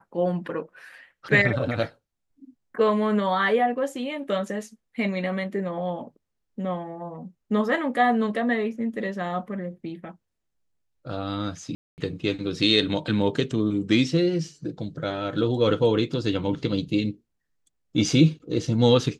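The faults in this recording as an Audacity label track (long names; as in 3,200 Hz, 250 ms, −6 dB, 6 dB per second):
11.750000	11.980000	drop-out 229 ms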